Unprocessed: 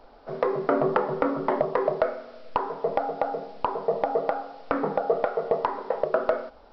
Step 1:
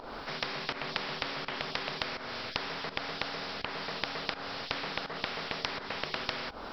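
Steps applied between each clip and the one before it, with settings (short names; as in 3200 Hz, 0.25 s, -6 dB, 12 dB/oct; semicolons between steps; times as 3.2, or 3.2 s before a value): pump 83 bpm, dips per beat 1, -15 dB, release 0.259 s; spectral compressor 10:1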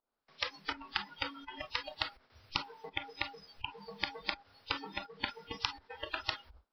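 gate with hold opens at -29 dBFS; spectral noise reduction 28 dB; gain +1.5 dB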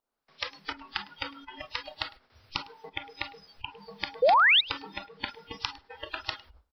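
painted sound rise, 4.22–4.61, 460–4000 Hz -21 dBFS; echo 0.105 s -22.5 dB; gain +1.5 dB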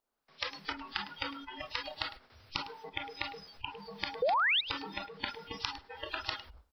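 compressor 6:1, threshold -27 dBFS, peak gain reduction 8.5 dB; transient shaper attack -2 dB, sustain +4 dB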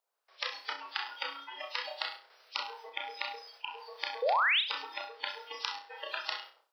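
inverse Chebyshev high-pass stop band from 180 Hz, stop band 50 dB; on a send: flutter echo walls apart 5.5 m, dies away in 0.32 s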